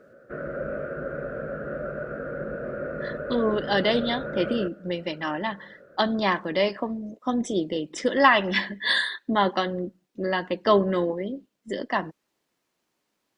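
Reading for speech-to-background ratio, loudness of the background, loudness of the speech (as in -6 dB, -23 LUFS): 7.5 dB, -33.0 LUFS, -25.5 LUFS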